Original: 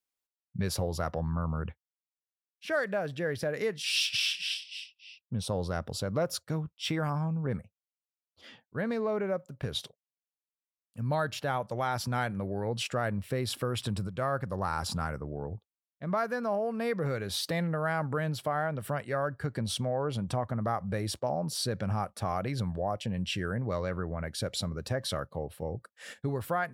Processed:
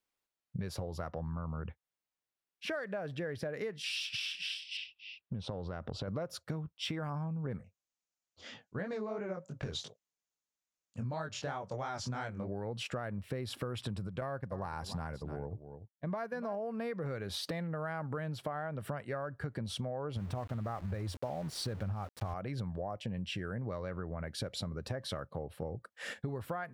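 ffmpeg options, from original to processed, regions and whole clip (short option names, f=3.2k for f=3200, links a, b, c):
-filter_complex "[0:a]asettb=1/sr,asplit=3[a][b][c];[a]atrim=end=4.774[d];[b]atrim=start=4.77:end=6.08,asetpts=PTS-STARTPTS,afade=t=in:d=0.004:c=qsin,afade=t=out:st=1.306:d=0.004:c=qsin,lowpass=3.9k,acompressor=threshold=-35dB:ratio=3:attack=3.2:release=140:knee=1:detection=peak[e];[c]atrim=start=6.076[f];[d][e]acrossfade=d=0.004:c1=hsin:c2=qsin[g];[g][f]acrossfade=d=0.004:c1=qsin:c2=hsin,asettb=1/sr,asplit=3[h][i][j];[h]atrim=end=7.584[k];[i]atrim=start=7.58:end=12.52,asetpts=PTS-STARTPTS,afade=t=in:d=0.004:c=qsin,afade=t=out:st=4.936:d=0.004:c=qsin,flanger=delay=18.5:depth=5.7:speed=3,lowpass=f=6.8k:t=q:w=4[l];[j]atrim=start=12.516[m];[k][l]acrossfade=d=0.004:c1=hsin:c2=qsin[n];[n][m]acrossfade=d=0.004:c1=qsin:c2=hsin,asettb=1/sr,asplit=3[o][p][q];[o]atrim=end=14.214[r];[p]atrim=start=14.21:end=16.6,asetpts=PTS-STARTPTS,afade=t=in:d=0.004:c=qsin,afade=t=out:st=2.386:d=0.004:c=qsin,agate=range=-33dB:threshold=-34dB:ratio=3:release=100:detection=peak,bandreject=f=1.3k:w=6,aecho=1:1:292:0.168,atrim=end_sample=105399[s];[q]atrim=start=16.596[t];[r][s]acrossfade=d=0.004:c1=hsin:c2=qsin[u];[u][t]acrossfade=d=0.004:c1=qsin:c2=hsin,asettb=1/sr,asplit=3[v][w][x];[v]atrim=end=20.164[y];[w]atrim=start=20.16:end=22.34,asetpts=PTS-STARTPTS,afade=t=in:d=0.004:c=qsin,afade=t=out:st=2.176:d=0.004:c=qsin,equalizer=f=87:w=3.5:g=13.5,aeval=exprs='val(0)*gte(abs(val(0)),0.0106)':c=same[z];[x]atrim=start=22.336[aa];[y][z]acrossfade=d=0.004:c1=hsin:c2=qsin[ab];[ab][aa]acrossfade=d=0.004:c1=qsin:c2=hsin,highshelf=f=4.6k:g=-9.5,acompressor=threshold=-42dB:ratio=6,volume=6dB"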